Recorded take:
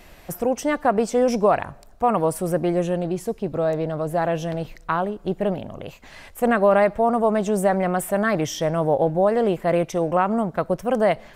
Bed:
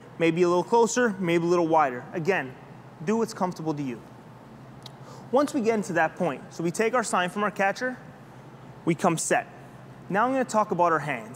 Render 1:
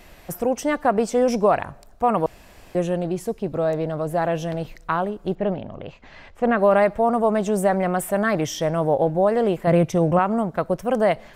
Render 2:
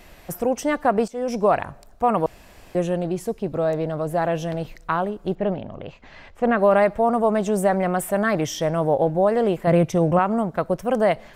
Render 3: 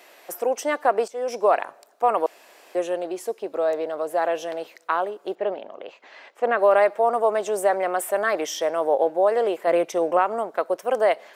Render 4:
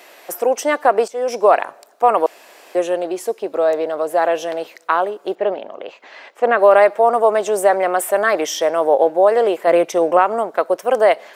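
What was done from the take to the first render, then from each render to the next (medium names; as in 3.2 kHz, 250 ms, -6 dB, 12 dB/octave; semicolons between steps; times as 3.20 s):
2.26–2.75 s: room tone; 5.35–6.59 s: distance through air 160 m; 9.67–10.19 s: peaking EQ 120 Hz +10.5 dB 2 oct
1.08–1.51 s: fade in, from -17.5 dB
high-pass 370 Hz 24 dB/octave
trim +6.5 dB; peak limiter -1 dBFS, peak gain reduction 1 dB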